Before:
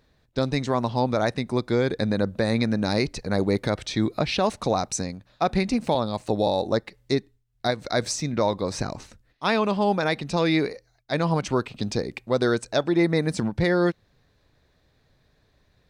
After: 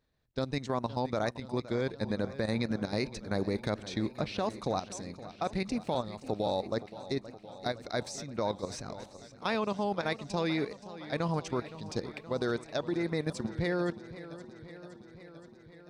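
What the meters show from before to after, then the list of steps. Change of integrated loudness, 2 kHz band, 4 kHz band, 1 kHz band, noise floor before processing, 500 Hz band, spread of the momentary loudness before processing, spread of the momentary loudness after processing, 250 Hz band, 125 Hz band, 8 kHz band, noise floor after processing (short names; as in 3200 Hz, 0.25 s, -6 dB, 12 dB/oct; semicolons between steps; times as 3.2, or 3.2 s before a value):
-9.0 dB, -9.0 dB, -9.5 dB, -9.0 dB, -66 dBFS, -9.0 dB, 7 LU, 13 LU, -9.5 dB, -9.0 dB, -11.5 dB, -54 dBFS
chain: level quantiser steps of 12 dB; warbling echo 0.519 s, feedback 71%, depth 97 cents, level -15.5 dB; gain -6 dB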